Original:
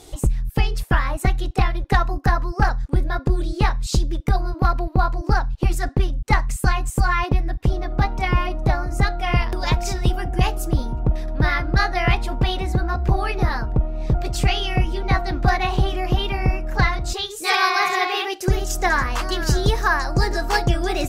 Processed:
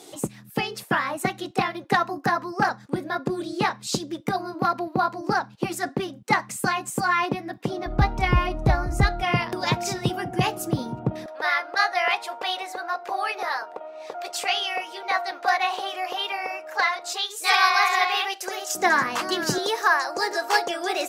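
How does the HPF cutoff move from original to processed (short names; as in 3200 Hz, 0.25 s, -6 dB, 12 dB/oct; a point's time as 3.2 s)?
HPF 24 dB/oct
180 Hz
from 7.86 s 45 Hz
from 9.23 s 130 Hz
from 11.26 s 530 Hz
from 18.75 s 180 Hz
from 19.58 s 410 Hz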